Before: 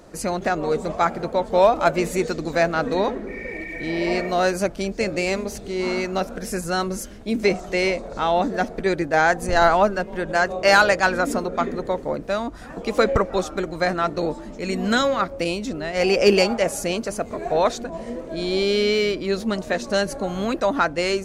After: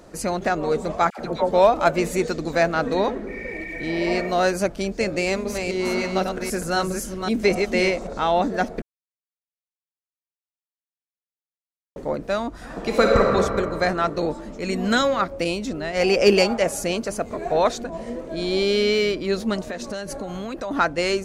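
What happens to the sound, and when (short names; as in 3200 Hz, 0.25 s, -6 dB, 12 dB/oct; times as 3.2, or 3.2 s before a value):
1.1–1.52 dispersion lows, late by 85 ms, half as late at 960 Hz
5.19–8.15 reverse delay 0.262 s, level -4.5 dB
8.82–11.96 mute
12.58–13.3 reverb throw, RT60 2.4 s, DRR -0.5 dB
19.67–20.71 compressor, threshold -26 dBFS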